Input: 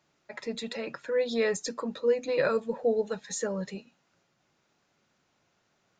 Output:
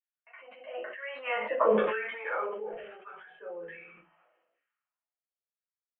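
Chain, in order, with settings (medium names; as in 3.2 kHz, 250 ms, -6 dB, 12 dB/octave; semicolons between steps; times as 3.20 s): Doppler pass-by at 1.63 s, 37 m/s, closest 4.5 m; gate with hold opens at -56 dBFS; Bessel high-pass 230 Hz, order 2; in parallel at -6 dB: short-mantissa float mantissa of 2-bit; on the sum: LFO high-pass saw down 1.1 Hz 430–1900 Hz; Chebyshev low-pass 3.1 kHz, order 8; simulated room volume 120 m³, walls furnished, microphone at 2.6 m; decay stretcher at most 43 dB/s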